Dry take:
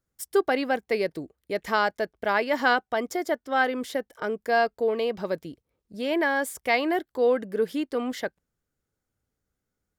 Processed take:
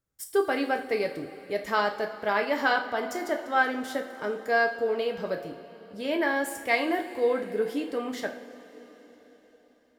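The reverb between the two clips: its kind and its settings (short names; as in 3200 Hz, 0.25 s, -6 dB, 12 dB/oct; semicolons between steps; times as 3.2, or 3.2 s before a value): two-slope reverb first 0.43 s, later 4.6 s, from -18 dB, DRR 2.5 dB; gain -3.5 dB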